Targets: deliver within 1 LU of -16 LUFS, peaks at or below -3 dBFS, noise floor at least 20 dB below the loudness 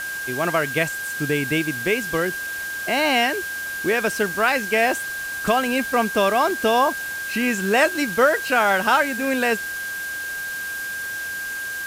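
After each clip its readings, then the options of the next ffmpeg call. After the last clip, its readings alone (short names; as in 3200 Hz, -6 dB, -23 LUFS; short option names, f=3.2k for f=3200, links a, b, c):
steady tone 1600 Hz; tone level -27 dBFS; noise floor -29 dBFS; noise floor target -42 dBFS; loudness -21.5 LUFS; peak -5.5 dBFS; loudness target -16.0 LUFS
-> -af "bandreject=f=1.6k:w=30"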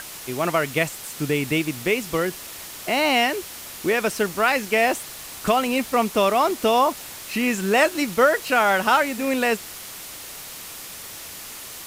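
steady tone none; noise floor -38 dBFS; noise floor target -42 dBFS
-> -af "afftdn=nr=6:nf=-38"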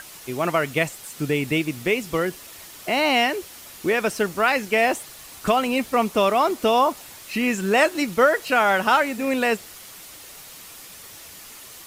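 noise floor -43 dBFS; loudness -21.5 LUFS; peak -6.5 dBFS; loudness target -16.0 LUFS
-> -af "volume=5.5dB,alimiter=limit=-3dB:level=0:latency=1"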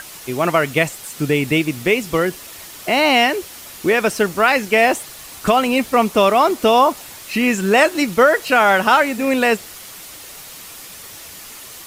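loudness -16.5 LUFS; peak -3.0 dBFS; noise floor -37 dBFS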